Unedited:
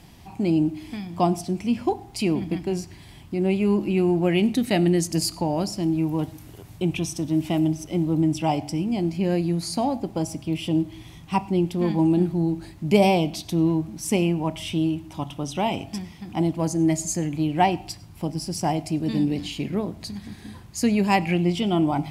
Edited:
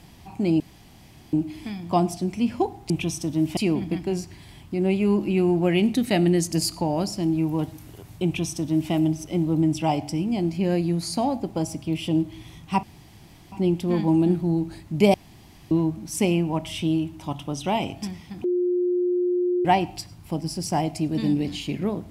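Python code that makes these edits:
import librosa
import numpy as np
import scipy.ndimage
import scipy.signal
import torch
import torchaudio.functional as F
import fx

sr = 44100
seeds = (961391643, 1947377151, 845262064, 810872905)

y = fx.edit(x, sr, fx.insert_room_tone(at_s=0.6, length_s=0.73),
    fx.duplicate(start_s=6.85, length_s=0.67, to_s=2.17),
    fx.insert_room_tone(at_s=11.43, length_s=0.69),
    fx.room_tone_fill(start_s=13.05, length_s=0.57),
    fx.bleep(start_s=16.35, length_s=1.21, hz=357.0, db=-19.5), tone=tone)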